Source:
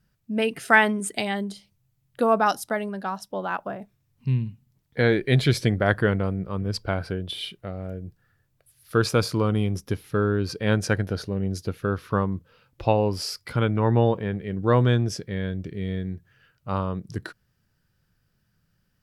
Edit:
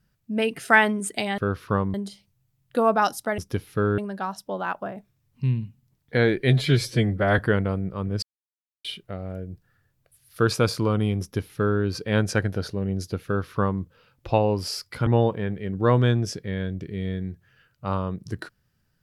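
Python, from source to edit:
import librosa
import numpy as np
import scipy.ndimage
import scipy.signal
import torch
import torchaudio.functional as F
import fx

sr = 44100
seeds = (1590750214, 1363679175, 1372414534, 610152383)

y = fx.edit(x, sr, fx.stretch_span(start_s=5.34, length_s=0.59, factor=1.5),
    fx.silence(start_s=6.77, length_s=0.62),
    fx.duplicate(start_s=9.75, length_s=0.6, to_s=2.82),
    fx.duplicate(start_s=11.8, length_s=0.56, to_s=1.38),
    fx.cut(start_s=13.61, length_s=0.29), tone=tone)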